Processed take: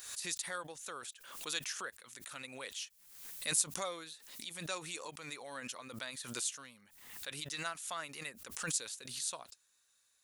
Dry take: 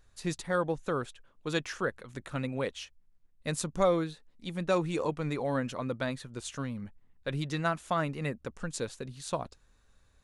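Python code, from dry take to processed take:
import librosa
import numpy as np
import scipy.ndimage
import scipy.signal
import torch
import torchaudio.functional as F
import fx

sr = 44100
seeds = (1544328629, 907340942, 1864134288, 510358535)

y = np.diff(x, prepend=0.0)
y = fx.pre_swell(y, sr, db_per_s=62.0)
y = y * librosa.db_to_amplitude(5.0)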